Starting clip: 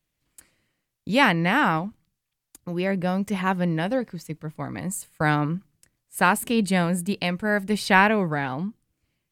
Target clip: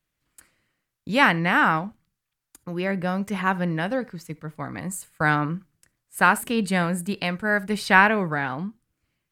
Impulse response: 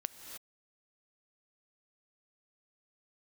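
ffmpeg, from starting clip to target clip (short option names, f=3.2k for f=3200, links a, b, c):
-filter_complex "[0:a]equalizer=f=1.4k:w=1.5:g=6[a];[1:a]atrim=start_sample=2205,atrim=end_sample=3528[b];[a][b]afir=irnorm=-1:irlink=0"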